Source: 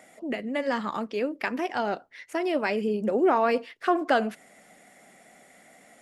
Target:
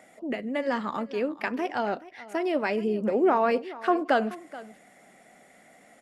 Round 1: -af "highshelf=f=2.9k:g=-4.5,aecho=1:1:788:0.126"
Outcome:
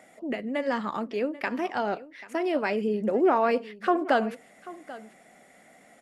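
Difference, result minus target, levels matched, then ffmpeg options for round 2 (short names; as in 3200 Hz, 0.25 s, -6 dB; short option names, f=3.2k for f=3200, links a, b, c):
echo 0.36 s late
-af "highshelf=f=2.9k:g=-4.5,aecho=1:1:428:0.126"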